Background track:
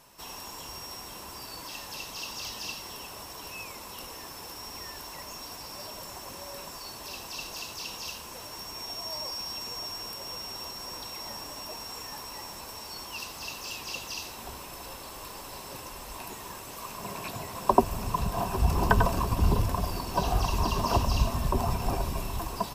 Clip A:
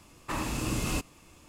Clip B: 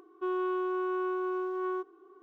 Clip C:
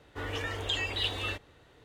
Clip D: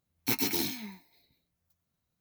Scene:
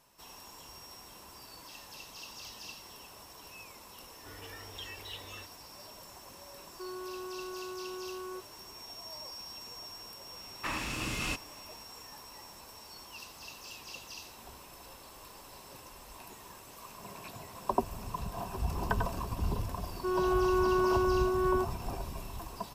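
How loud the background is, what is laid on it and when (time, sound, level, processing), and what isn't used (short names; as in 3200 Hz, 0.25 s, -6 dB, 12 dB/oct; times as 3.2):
background track -9 dB
4.09 add C -13.5 dB
6.58 add B -7 dB + limiter -28.5 dBFS
10.35 add A -8 dB + bell 2400 Hz +11 dB 2.3 oct
19.82 add B -0.5 dB + AGC gain up to 4.5 dB
not used: D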